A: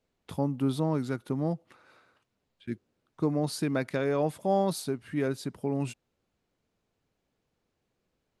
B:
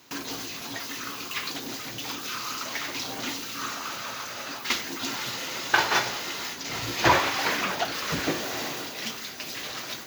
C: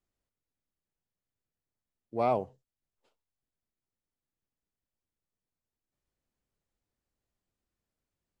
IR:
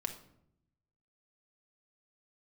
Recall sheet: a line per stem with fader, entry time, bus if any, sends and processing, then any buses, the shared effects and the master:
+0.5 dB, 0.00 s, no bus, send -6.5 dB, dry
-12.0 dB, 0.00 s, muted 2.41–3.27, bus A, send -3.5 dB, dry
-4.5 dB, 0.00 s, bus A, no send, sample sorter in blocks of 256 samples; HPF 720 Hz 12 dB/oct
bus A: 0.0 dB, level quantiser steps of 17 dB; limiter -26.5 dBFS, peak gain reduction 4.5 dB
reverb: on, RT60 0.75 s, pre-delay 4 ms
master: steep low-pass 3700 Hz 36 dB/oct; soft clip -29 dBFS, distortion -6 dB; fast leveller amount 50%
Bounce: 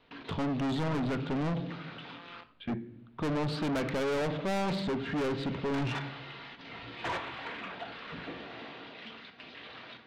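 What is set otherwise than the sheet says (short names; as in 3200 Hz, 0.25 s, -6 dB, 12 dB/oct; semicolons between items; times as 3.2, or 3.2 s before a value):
stem A +0.5 dB -> +7.5 dB; master: missing fast leveller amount 50%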